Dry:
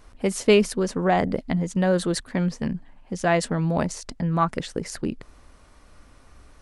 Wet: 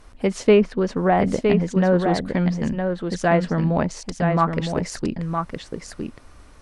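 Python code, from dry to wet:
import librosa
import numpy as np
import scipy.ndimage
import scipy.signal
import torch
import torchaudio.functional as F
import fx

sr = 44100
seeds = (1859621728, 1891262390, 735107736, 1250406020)

p1 = fx.env_lowpass_down(x, sr, base_hz=2000.0, full_db=-16.5)
p2 = p1 + fx.echo_single(p1, sr, ms=963, db=-5.5, dry=0)
y = p2 * 10.0 ** (2.5 / 20.0)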